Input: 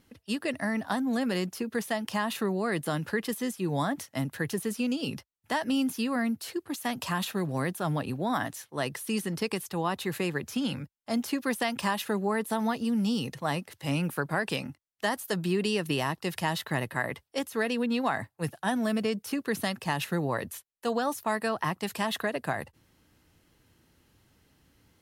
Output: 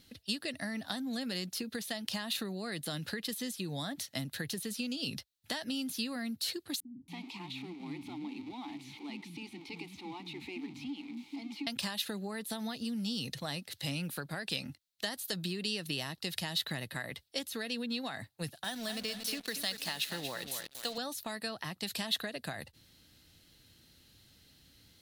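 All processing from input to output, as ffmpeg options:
ffmpeg -i in.wav -filter_complex "[0:a]asettb=1/sr,asplit=3[link_01][link_02][link_03];[link_01]atrim=end=6.804[link_04];[link_02]atrim=start=6.8:end=11.67,asetpts=PTS-STARTPTS,afade=type=in:duration=0.004:curve=qsin,afade=type=out:start_time=4.866:duration=0.004:curve=qsin,aeval=exprs='val(0)+0.5*0.0376*sgn(val(0))':channel_layout=same,asplit=3[link_05][link_06][link_07];[link_05]bandpass=frequency=300:width_type=q:width=8,volume=0dB[link_08];[link_06]bandpass=frequency=870:width_type=q:width=8,volume=-6dB[link_09];[link_07]bandpass=frequency=2240:width_type=q:width=8,volume=-9dB[link_10];[link_08][link_09][link_10]amix=inputs=3:normalize=0,acrossover=split=240[link_11][link_12];[link_12]adelay=280[link_13];[link_11][link_13]amix=inputs=2:normalize=0,atrim=end_sample=214767[link_14];[link_03]atrim=start=11.666[link_15];[link_04][link_14]acrossfade=duration=0.004:curve1=hsin:curve2=qsin[link_16];[link_16][link_15]acrossfade=duration=0.004:curve1=qsin:curve2=hsin,asettb=1/sr,asplit=3[link_17][link_18][link_19];[link_17]atrim=end=18.644[link_20];[link_18]atrim=start=18.64:end=20.98,asetpts=PTS-STARTPTS,afade=type=in:duration=0.004:curve=qsin,afade=type=out:start_time=2.336:duration=0.004:curve=qsin,highpass=frequency=500:poles=1,aecho=1:1:233|466|699|932:0.316|0.114|0.041|0.0148,atrim=end_sample=103194,acrusher=bits=6:mix=0:aa=0.5[link_21];[link_19]atrim=start=20.976[link_22];[link_20][link_21]acrossfade=duration=0.004:curve1=hsin:curve2=qsin[link_23];[link_23][link_22]acrossfade=duration=0.004:curve1=qsin:curve2=hsin,highshelf=frequency=6200:gain=5.5,acompressor=threshold=-35dB:ratio=4,equalizer=frequency=400:width_type=o:width=0.67:gain=-4,equalizer=frequency=1000:width_type=o:width=0.67:gain=-8,equalizer=frequency=4000:width_type=o:width=0.67:gain=12" out.wav

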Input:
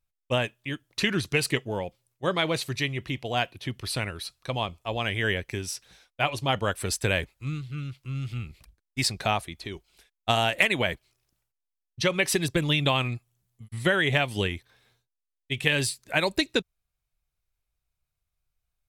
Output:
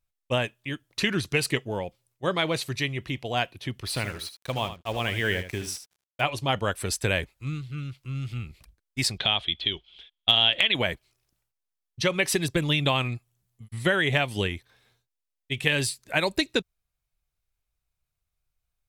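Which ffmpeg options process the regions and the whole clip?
ffmpeg -i in.wav -filter_complex "[0:a]asettb=1/sr,asplit=3[link_01][link_02][link_03];[link_01]atrim=end=3.874[link_04];[link_02]atrim=start=3.87:end=6.21,asetpts=PTS-STARTPTS,afade=type=in:duration=0.004:curve=qsin,afade=type=out:start_time=2.336:duration=0.004:curve=qsin,acrusher=bits=6:mix=0:aa=0.5,aecho=1:1:77:0.282,atrim=end_sample=103194[link_05];[link_03]atrim=start=6.206[link_06];[link_04][link_05]acrossfade=duration=0.004:curve1=hsin:curve2=qsin[link_07];[link_07][link_06]acrossfade=duration=0.004:curve1=qsin:curve2=hsin,asettb=1/sr,asplit=3[link_08][link_09][link_10];[link_08]atrim=end=9.184[link_11];[link_09]atrim=start=9.18:end=10.75,asetpts=PTS-STARTPTS,afade=type=in:duration=0.004:curve=qsin,afade=type=out:start_time=1.566:duration=0.004:curve=qsin,acompressor=threshold=-28dB:ratio=2.5:attack=3.2:release=140:knee=1:detection=peak,lowpass=frequency=3300:width_type=q:width=13,asoftclip=type=hard:threshold=-7dB[link_12];[link_10]atrim=start=10.746[link_13];[link_11][link_12]acrossfade=duration=0.004:curve1=hsin:curve2=qsin[link_14];[link_14][link_13]acrossfade=duration=0.004:curve1=qsin:curve2=hsin" out.wav

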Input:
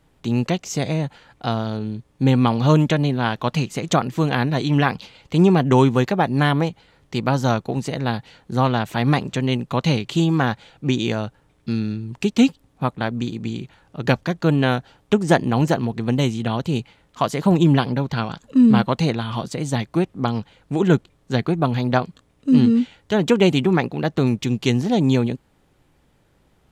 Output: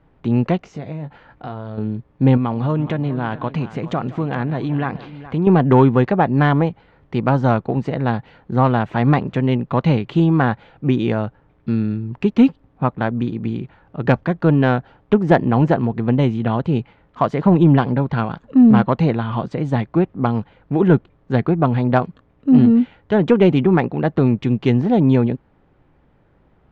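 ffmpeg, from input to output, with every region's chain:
ffmpeg -i in.wav -filter_complex "[0:a]asettb=1/sr,asplit=3[link_01][link_02][link_03];[link_01]atrim=end=0.604[link_04];[link_02]atrim=start=0.6:end=1.78,asetpts=PTS-STARTPTS,afade=type=in:duration=0.004:curve=qsin,afade=type=out:start_time=1.176:duration=0.004:curve=qsin,acompressor=threshold=-33dB:ratio=3:attack=3.2:release=140:knee=1:detection=peak,asplit=2[link_05][link_06];[link_06]adelay=20,volume=-9dB[link_07];[link_05][link_07]amix=inputs=2:normalize=0,atrim=end_sample=52038[link_08];[link_03]atrim=start=1.776[link_09];[link_04][link_08]acrossfade=duration=0.004:curve1=hsin:curve2=qsin[link_10];[link_10][link_09]acrossfade=duration=0.004:curve1=qsin:curve2=hsin,asettb=1/sr,asplit=3[link_11][link_12][link_13];[link_11]atrim=end=2.374[link_14];[link_12]atrim=start=2.37:end=5.47,asetpts=PTS-STARTPTS,afade=type=in:duration=0.004:curve=qsin,afade=type=out:start_time=3.096:duration=0.004:curve=qsin,acompressor=threshold=-23dB:ratio=2.5:attack=3.2:release=140:knee=1:detection=peak,aecho=1:1:169|420:0.119|0.168,atrim=end_sample=136710[link_15];[link_13]atrim=start=5.466[link_16];[link_14][link_15]acrossfade=duration=0.004:curve1=hsin:curve2=qsin[link_17];[link_17][link_16]acrossfade=duration=0.004:curve1=qsin:curve2=hsin,lowpass=1800,acontrast=24,volume=-1dB" out.wav

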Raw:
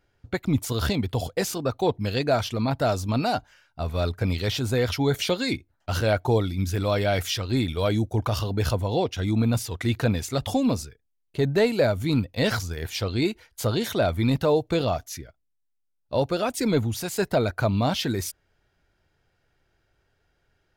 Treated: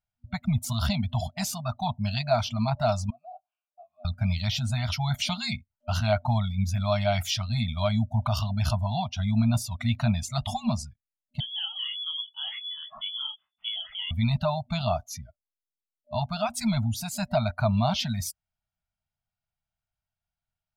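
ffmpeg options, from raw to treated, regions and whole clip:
ffmpeg -i in.wav -filter_complex "[0:a]asettb=1/sr,asplit=3[link_01][link_02][link_03];[link_01]atrim=end=3.104[link_04];[link_02]atrim=start=3.1:end=4.05,asetpts=PTS-STARTPTS,afade=type=in:duration=0.004:curve=qsin,afade=type=out:start_time=0.946:duration=0.004:curve=qsin,asplit=2[link_05][link_06];[link_06]adelay=18,volume=-12dB[link_07];[link_05][link_07]amix=inputs=2:normalize=0,atrim=end_sample=41895,acompressor=threshold=-38dB:ratio=5:attack=3.2:release=140:knee=1:detection=peak,asplit=3[link_08][link_09][link_10];[link_08]bandpass=frequency=730:width_type=q:width=8,volume=0dB[link_11];[link_09]bandpass=frequency=1090:width_type=q:width=8,volume=-6dB[link_12];[link_10]bandpass=frequency=2440:width_type=q:width=8,volume=-9dB[link_13];[link_11][link_12][link_13]amix=inputs=3:normalize=0[link_14];[link_03]atrim=start=4.046[link_15];[link_04][link_14]acrossfade=duration=0.004:curve1=hsin:curve2=qsin[link_16];[link_16][link_15]acrossfade=duration=0.004:curve1=qsin:curve2=hsin,asettb=1/sr,asplit=3[link_17][link_18][link_19];[link_17]atrim=end=11.404[link_20];[link_18]atrim=start=11.4:end=14.11,asetpts=PTS-STARTPTS,afade=type=in:duration=0.004:curve=qsin,afade=type=out:start_time=2.706:duration=0.004:curve=qsin,acompressor=threshold=-30dB:ratio=2.5:attack=3.2:release=140:knee=1:detection=peak,flanger=delay=17.5:depth=6.8:speed=1.3,lowpass=frequency=3000:width_type=q:width=0.5098,lowpass=frequency=3000:width_type=q:width=0.6013,lowpass=frequency=3000:width_type=q:width=0.9,lowpass=frequency=3000:width_type=q:width=2.563,afreqshift=-3500[link_21];[link_19]atrim=start=14.106[link_22];[link_20][link_21]acrossfade=duration=0.004:curve1=hsin:curve2=qsin[link_23];[link_23][link_22]acrossfade=duration=0.004:curve1=qsin:curve2=hsin,afftdn=noise_reduction=20:noise_floor=-41,afftfilt=real='re*(1-between(b*sr/4096,240,600))':imag='im*(1-between(b*sr/4096,240,600))':win_size=4096:overlap=0.75,equalizer=frequency=1700:width_type=o:width=0.36:gain=-10" out.wav

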